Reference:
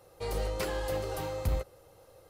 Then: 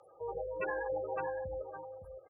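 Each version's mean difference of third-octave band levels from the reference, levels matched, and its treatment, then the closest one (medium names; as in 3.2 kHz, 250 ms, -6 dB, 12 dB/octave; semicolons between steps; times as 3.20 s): 15.5 dB: spectral gate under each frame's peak -15 dB strong; frequency weighting ITU-R 468; delay 563 ms -8.5 dB; trim +4 dB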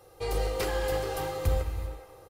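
3.5 dB: comb 2.5 ms, depth 39%; on a send: repeats whose band climbs or falls 213 ms, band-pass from 2.7 kHz, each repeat -0.7 oct, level -11 dB; on the sum: gated-style reverb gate 420 ms flat, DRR 6.5 dB; trim +2 dB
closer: second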